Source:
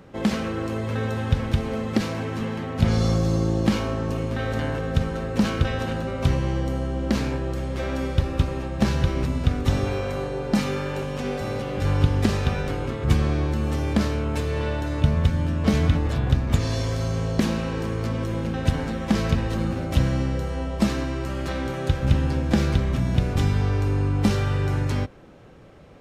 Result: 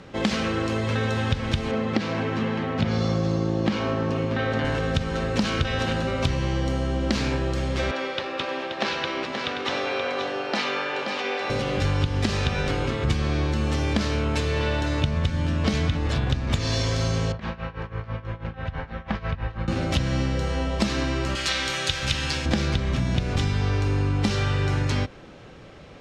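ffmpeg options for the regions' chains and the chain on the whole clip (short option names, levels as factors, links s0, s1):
-filter_complex "[0:a]asettb=1/sr,asplit=3[s0][s1][s2];[s0]atrim=end=1.714[s3];[s1]atrim=start=1.71:end=4.65,asetpts=PTS-STARTPTS,afade=t=in:d=0.004:c=qsin,afade=t=out:st=2.936:d=0.004:c=qsin,highpass=110,aemphasis=mode=reproduction:type=75fm[s4];[s2]atrim=start=4.646[s5];[s3][s4]acrossfade=d=0.004:c1=hsin:c2=qsin[s6];[s6][s5]acrossfade=d=0.004:c1=qsin:c2=hsin,asettb=1/sr,asplit=3[s7][s8][s9];[s7]atrim=end=7.914[s10];[s8]atrim=start=7.91:end=11.5,asetpts=PTS-STARTPTS,afade=t=in:d=0.004:c=qsin,afade=t=out:st=3.586:d=0.004:c=qsin,highpass=250,acrossover=split=360 4700:gain=0.251 1 0.141[s11][s12][s13];[s11][s12][s13]amix=inputs=3:normalize=0,aecho=1:1:528:0.447,atrim=end_sample=158319[s14];[s9]atrim=start=11.496[s15];[s10][s14]acrossfade=d=0.004:c1=hsin:c2=qsin[s16];[s16][s15]acrossfade=d=0.004:c1=qsin:c2=hsin,asettb=1/sr,asplit=3[s17][s18][s19];[s17]atrim=end=17.324[s20];[s18]atrim=start=17.32:end=19.68,asetpts=PTS-STARTPTS,afade=t=in:d=0.004:c=qsin,afade=t=out:st=2.356:d=0.004:c=qsin,lowpass=1600,tremolo=f=6.1:d=0.86,equalizer=f=290:w=0.89:g=-14.5[s21];[s19]atrim=start=19.676[s22];[s20][s21]acrossfade=d=0.004:c1=hsin:c2=qsin[s23];[s23][s22]acrossfade=d=0.004:c1=qsin:c2=hsin,asettb=1/sr,asplit=3[s24][s25][s26];[s24]atrim=end=21.354[s27];[s25]atrim=start=21.35:end=22.46,asetpts=PTS-STARTPTS,afade=t=in:d=0.004:c=qsin,afade=t=out:st=1.106:d=0.004:c=qsin,tiltshelf=f=1300:g=-9.5,bandreject=f=240:w=6.2[s28];[s26]atrim=start=22.456[s29];[s27][s28]acrossfade=d=0.004:c1=hsin:c2=qsin[s30];[s30][s29]acrossfade=d=0.004:c1=qsin:c2=hsin,lowpass=5500,highshelf=f=2200:g=10.5,acompressor=threshold=0.0794:ratio=6,volume=1.33"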